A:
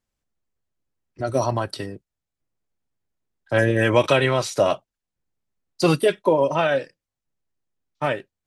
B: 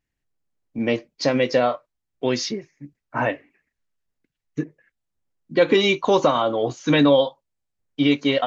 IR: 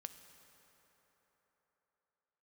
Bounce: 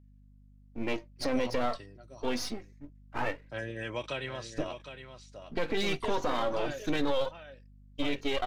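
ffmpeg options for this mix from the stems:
-filter_complex "[0:a]aeval=exprs='val(0)+0.0158*(sin(2*PI*50*n/s)+sin(2*PI*2*50*n/s)/2+sin(2*PI*3*50*n/s)/3+sin(2*PI*4*50*n/s)/4+sin(2*PI*5*50*n/s)/5)':channel_layout=same,lowpass=frequency=8600:width=0.5412,lowpass=frequency=8600:width=1.3066,equalizer=frequency=3500:width_type=o:width=2:gain=6,volume=-20dB,asplit=2[link_01][link_02];[link_02]volume=-10dB[link_03];[1:a]aeval=exprs='if(lt(val(0),0),0.251*val(0),val(0))':channel_layout=same,flanger=delay=1.7:depth=2.8:regen=44:speed=0.26:shape=sinusoidal,volume=-2dB[link_04];[link_03]aecho=0:1:761:1[link_05];[link_01][link_04][link_05]amix=inputs=3:normalize=0,alimiter=limit=-19dB:level=0:latency=1:release=11"

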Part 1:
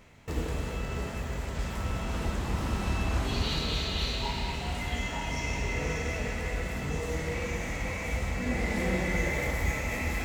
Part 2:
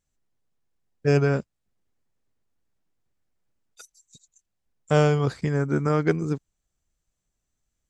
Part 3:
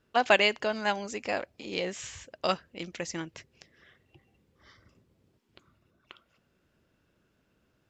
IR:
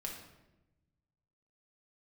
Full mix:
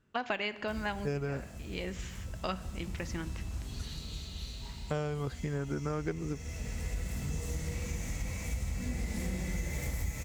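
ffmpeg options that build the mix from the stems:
-filter_complex "[0:a]bass=frequency=250:gain=12,treble=frequency=4000:gain=15,adelay=400,volume=-11dB,afade=type=in:start_time=6.37:duration=0.57:silence=0.334965[link_01];[1:a]volume=-7.5dB,asplit=2[link_02][link_03];[2:a]lowpass=frequency=1500:poles=1,deesser=0.75,equalizer=frequency=550:width_type=o:width=1.7:gain=-8.5,volume=1.5dB,asplit=2[link_04][link_05];[link_05]volume=-10dB[link_06];[link_03]apad=whole_len=348044[link_07];[link_04][link_07]sidechaincompress=threshold=-38dB:ratio=8:attack=16:release=632[link_08];[3:a]atrim=start_sample=2205[link_09];[link_06][link_09]afir=irnorm=-1:irlink=0[link_10];[link_01][link_02][link_08][link_10]amix=inputs=4:normalize=0,acompressor=threshold=-31dB:ratio=4"

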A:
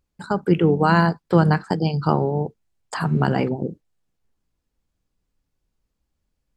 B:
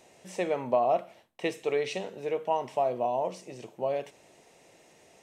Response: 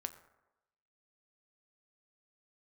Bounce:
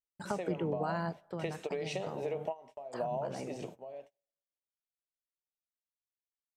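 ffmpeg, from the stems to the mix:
-filter_complex "[0:a]alimiter=limit=-8.5dB:level=0:latency=1,volume=-9.5dB,afade=type=out:start_time=1.11:duration=0.22:silence=0.251189,asplit=3[link_01][link_02][link_03];[link_02]volume=-17.5dB[link_04];[1:a]agate=range=-18dB:threshold=-50dB:ratio=16:detection=peak,acompressor=threshold=-30dB:ratio=16,volume=-2dB,asplit=2[link_05][link_06];[link_06]volume=-12.5dB[link_07];[link_03]apad=whole_len=230610[link_08];[link_05][link_08]sidechaingate=range=-33dB:threshold=-52dB:ratio=16:detection=peak[link_09];[2:a]atrim=start_sample=2205[link_10];[link_04][link_07]amix=inputs=2:normalize=0[link_11];[link_11][link_10]afir=irnorm=-1:irlink=0[link_12];[link_01][link_09][link_12]amix=inputs=3:normalize=0,agate=range=-28dB:threshold=-54dB:ratio=16:detection=peak,equalizer=frequency=630:width_type=o:width=0.67:gain=5.5,acompressor=threshold=-33dB:ratio=3"

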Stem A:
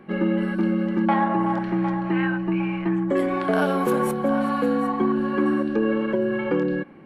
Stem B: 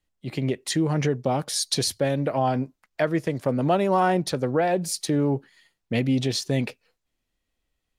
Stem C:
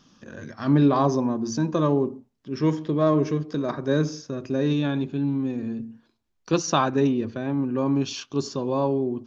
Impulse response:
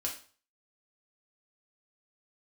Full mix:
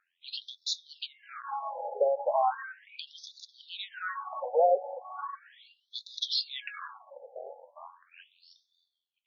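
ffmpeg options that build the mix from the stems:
-filter_complex "[0:a]alimiter=limit=-18.5dB:level=0:latency=1,adelay=350,volume=1dB,asplit=2[link_01][link_02];[link_02]volume=-18.5dB[link_03];[1:a]highshelf=frequency=3000:width_type=q:width=3:gain=6.5,alimiter=limit=-15.5dB:level=0:latency=1:release=73,volume=2.5dB[link_04];[2:a]alimiter=limit=-16dB:level=0:latency=1,tremolo=f=86:d=0.919,volume=0dB,asplit=2[link_05][link_06];[link_06]volume=-15.5dB[link_07];[link_01][link_05]amix=inputs=2:normalize=0,lowpass=frequency=1400:poles=1,alimiter=level_in=0.5dB:limit=-24dB:level=0:latency=1:release=63,volume=-0.5dB,volume=0dB[link_08];[3:a]atrim=start_sample=2205[link_09];[link_03][link_07]amix=inputs=2:normalize=0[link_10];[link_10][link_09]afir=irnorm=-1:irlink=0[link_11];[link_04][link_08][link_11]amix=inputs=3:normalize=0,highshelf=frequency=4800:gain=-11,afftfilt=real='re*between(b*sr/1024,600*pow(4900/600,0.5+0.5*sin(2*PI*0.37*pts/sr))/1.41,600*pow(4900/600,0.5+0.5*sin(2*PI*0.37*pts/sr))*1.41)':imag='im*between(b*sr/1024,600*pow(4900/600,0.5+0.5*sin(2*PI*0.37*pts/sr))/1.41,600*pow(4900/600,0.5+0.5*sin(2*PI*0.37*pts/sr))*1.41)':win_size=1024:overlap=0.75"

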